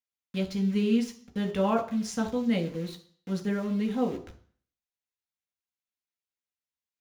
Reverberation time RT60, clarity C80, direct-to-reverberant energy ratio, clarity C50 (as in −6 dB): 0.50 s, 17.5 dB, 3.0 dB, 13.0 dB